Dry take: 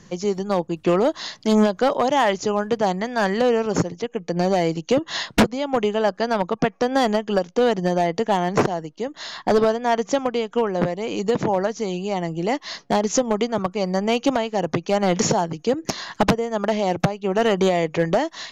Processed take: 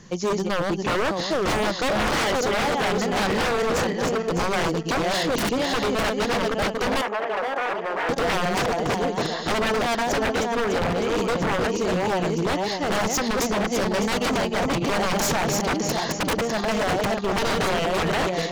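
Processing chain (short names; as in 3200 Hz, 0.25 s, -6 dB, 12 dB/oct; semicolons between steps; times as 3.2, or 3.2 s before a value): regenerating reverse delay 0.302 s, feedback 55%, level -3.5 dB; wavefolder -18.5 dBFS; 7.01–8.09 three-band isolator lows -22 dB, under 390 Hz, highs -18 dB, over 2600 Hz; gain +1 dB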